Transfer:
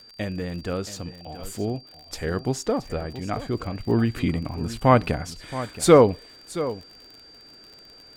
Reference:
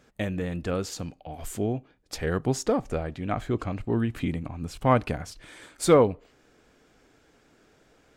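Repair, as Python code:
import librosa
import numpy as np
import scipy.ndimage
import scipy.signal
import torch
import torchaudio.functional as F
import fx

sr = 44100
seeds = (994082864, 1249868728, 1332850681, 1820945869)

y = fx.fix_declick_ar(x, sr, threshold=6.5)
y = fx.notch(y, sr, hz=4700.0, q=30.0)
y = fx.fix_echo_inverse(y, sr, delay_ms=675, level_db=-14.0)
y = fx.gain(y, sr, db=fx.steps((0.0, 0.0), (3.85, -4.5)))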